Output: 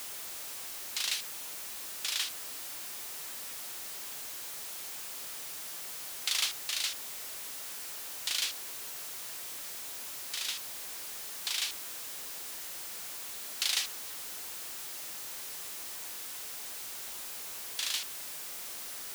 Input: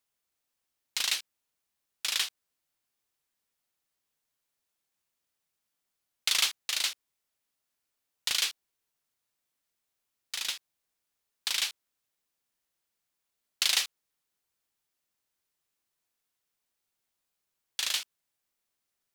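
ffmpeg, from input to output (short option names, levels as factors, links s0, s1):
-af "aeval=exprs='val(0)+0.5*0.0335*sgn(val(0))':c=same,bass=f=250:g=-7,treble=f=4000:g=2,volume=0.447"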